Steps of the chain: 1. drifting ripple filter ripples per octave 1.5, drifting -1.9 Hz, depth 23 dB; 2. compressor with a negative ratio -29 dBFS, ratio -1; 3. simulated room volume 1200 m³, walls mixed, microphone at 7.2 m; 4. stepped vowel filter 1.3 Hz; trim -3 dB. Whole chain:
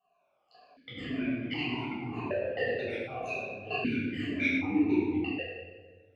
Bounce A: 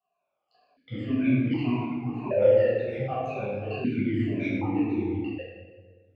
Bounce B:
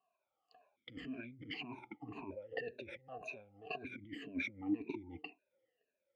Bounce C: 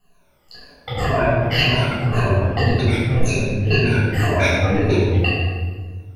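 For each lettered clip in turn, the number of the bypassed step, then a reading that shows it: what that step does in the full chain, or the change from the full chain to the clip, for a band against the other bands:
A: 2, 2 kHz band -11.5 dB; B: 3, momentary loudness spread change +1 LU; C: 4, 125 Hz band +11.5 dB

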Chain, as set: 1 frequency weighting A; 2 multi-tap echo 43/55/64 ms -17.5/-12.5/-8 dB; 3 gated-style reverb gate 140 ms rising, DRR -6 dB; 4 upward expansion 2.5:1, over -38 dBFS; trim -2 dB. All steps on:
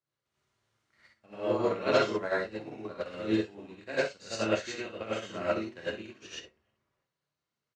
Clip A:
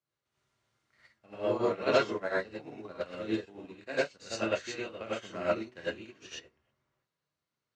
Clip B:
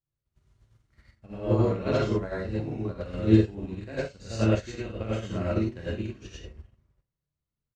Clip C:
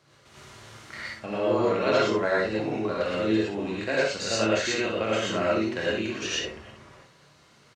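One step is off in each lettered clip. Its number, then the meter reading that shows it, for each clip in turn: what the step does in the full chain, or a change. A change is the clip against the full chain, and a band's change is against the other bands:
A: 2, momentary loudness spread change +2 LU; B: 1, 125 Hz band +19.5 dB; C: 4, 8 kHz band +4.0 dB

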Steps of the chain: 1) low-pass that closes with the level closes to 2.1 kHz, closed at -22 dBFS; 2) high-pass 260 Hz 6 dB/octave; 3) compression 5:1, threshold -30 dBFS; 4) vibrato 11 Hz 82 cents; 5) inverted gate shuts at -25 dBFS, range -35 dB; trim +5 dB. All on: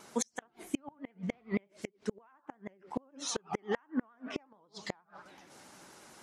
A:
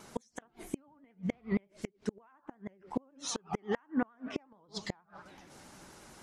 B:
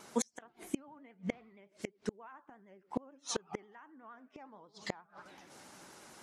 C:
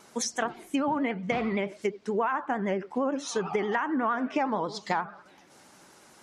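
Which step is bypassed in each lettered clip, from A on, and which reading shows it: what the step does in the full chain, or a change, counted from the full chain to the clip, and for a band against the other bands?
2, 125 Hz band +3.5 dB; 3, crest factor change +3.5 dB; 5, momentary loudness spread change -14 LU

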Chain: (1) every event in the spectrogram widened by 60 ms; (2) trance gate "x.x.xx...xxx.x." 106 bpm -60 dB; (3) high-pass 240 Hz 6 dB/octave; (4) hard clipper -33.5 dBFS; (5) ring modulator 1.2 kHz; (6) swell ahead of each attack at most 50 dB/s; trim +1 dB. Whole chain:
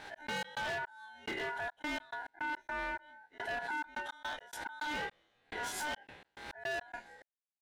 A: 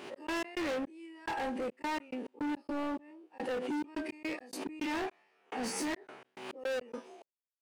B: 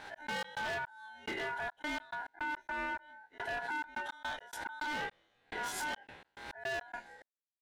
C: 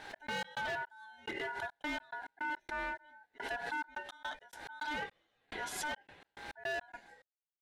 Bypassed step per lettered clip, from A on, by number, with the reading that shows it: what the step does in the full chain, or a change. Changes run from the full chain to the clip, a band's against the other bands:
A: 5, momentary loudness spread change -3 LU; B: 3, momentary loudness spread change -1 LU; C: 1, crest factor change +3.5 dB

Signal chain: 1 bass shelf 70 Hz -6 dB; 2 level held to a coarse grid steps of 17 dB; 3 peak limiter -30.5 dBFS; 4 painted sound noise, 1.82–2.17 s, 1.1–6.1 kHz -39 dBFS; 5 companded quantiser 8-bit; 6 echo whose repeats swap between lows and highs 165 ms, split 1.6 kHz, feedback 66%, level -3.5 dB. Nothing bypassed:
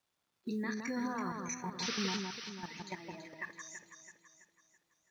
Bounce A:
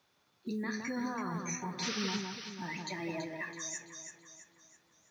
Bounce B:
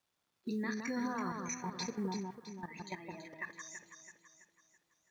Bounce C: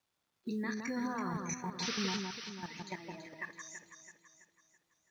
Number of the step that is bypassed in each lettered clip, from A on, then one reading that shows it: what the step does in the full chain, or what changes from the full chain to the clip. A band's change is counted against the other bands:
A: 2, 125 Hz band +2.0 dB; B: 4, 4 kHz band -8.0 dB; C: 1, 125 Hz band +2.0 dB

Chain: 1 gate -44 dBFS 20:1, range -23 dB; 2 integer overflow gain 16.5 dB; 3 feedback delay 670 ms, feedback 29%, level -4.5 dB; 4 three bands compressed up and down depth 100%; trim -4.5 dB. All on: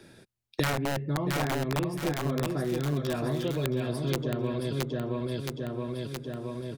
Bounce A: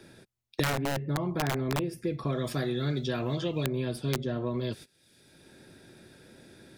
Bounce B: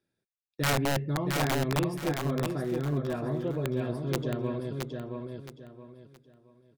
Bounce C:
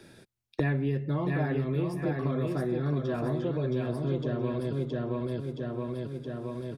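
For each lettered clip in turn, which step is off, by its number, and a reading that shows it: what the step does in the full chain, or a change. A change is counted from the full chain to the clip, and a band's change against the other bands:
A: 3, momentary loudness spread change -3 LU; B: 4, crest factor change -5.0 dB; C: 2, distortion -3 dB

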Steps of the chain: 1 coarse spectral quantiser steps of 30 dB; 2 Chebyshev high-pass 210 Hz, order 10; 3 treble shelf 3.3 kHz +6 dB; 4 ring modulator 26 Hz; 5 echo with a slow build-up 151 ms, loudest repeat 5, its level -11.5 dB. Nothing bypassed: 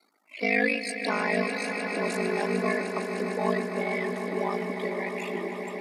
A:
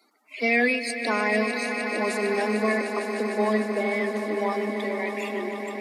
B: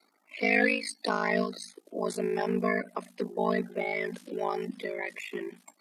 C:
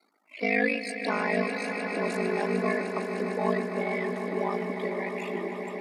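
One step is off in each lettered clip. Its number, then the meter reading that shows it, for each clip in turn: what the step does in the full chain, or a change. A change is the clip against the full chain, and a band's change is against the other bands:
4, crest factor change -3.0 dB; 5, echo-to-direct -2.0 dB to none; 3, 8 kHz band -5.0 dB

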